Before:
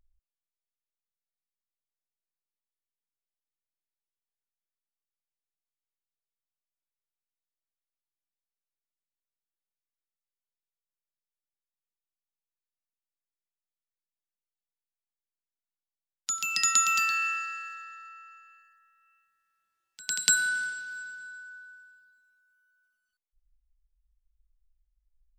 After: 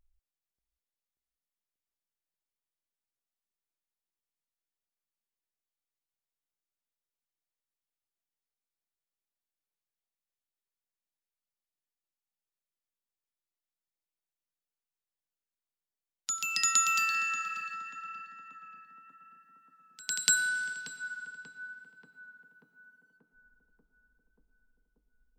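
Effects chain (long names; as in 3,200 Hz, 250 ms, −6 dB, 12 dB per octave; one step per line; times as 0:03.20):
tape delay 585 ms, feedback 87%, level −5 dB, low-pass 1,000 Hz
level −2.5 dB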